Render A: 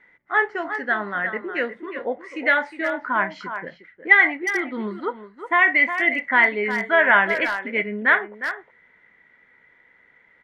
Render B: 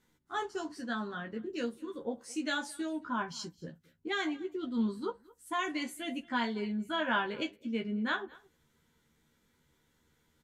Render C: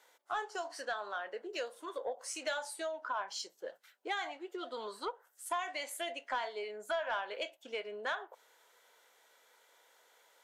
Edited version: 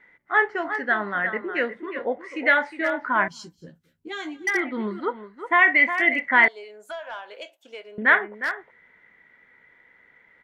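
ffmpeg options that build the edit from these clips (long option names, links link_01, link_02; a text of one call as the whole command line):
ffmpeg -i take0.wav -i take1.wav -i take2.wav -filter_complex "[0:a]asplit=3[link_01][link_02][link_03];[link_01]atrim=end=3.282[link_04];[1:a]atrim=start=3.278:end=4.472[link_05];[link_02]atrim=start=4.468:end=6.482[link_06];[2:a]atrim=start=6.478:end=7.982[link_07];[link_03]atrim=start=7.978[link_08];[link_04][link_05]acrossfade=duration=0.004:curve1=hsin:curve2=hsin[link_09];[link_09][link_06]acrossfade=duration=0.004:curve1=hsin:curve2=hsin[link_10];[link_10][link_07]acrossfade=duration=0.004:curve1=hsin:curve2=hsin[link_11];[link_11][link_08]acrossfade=duration=0.004:curve1=hsin:curve2=hsin" out.wav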